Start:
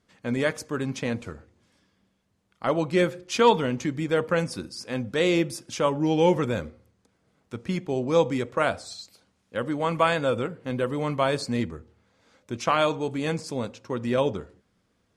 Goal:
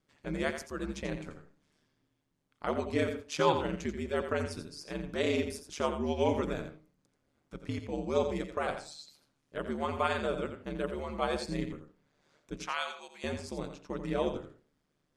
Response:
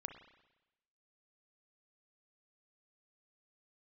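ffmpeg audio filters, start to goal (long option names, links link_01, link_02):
-filter_complex "[0:a]asettb=1/sr,asplit=3[link_01][link_02][link_03];[link_01]atrim=end=12.654[link_04];[link_02]atrim=start=12.65:end=13.24,asetpts=PTS-STARTPTS,afade=type=in:duration=0.004:curve=qsin,afade=type=out:start_time=0.586:duration=0.004:curve=qsin,highpass=1200[link_05];[link_03]atrim=start=13.236[link_06];[link_04][link_05]acrossfade=duration=0.004:curve1=hsin:curve2=qsin[link_07];[link_07][link_06]acrossfade=duration=0.004:curve1=qsin:curve2=hsin,aeval=exprs='val(0)*sin(2*PI*74*n/s)':channel_layout=same,asplit=2[link_08][link_09];[1:a]atrim=start_sample=2205,atrim=end_sample=4410,adelay=86[link_10];[link_09][link_10]afir=irnorm=-1:irlink=0,volume=-4.5dB[link_11];[link_08][link_11]amix=inputs=2:normalize=0,volume=-5.5dB"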